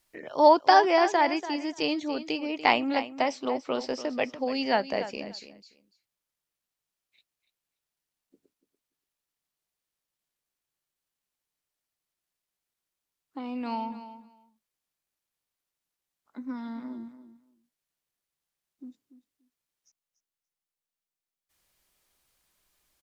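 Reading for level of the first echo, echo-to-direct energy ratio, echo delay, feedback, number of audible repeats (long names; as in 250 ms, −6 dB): −13.0 dB, −13.0 dB, 289 ms, 16%, 2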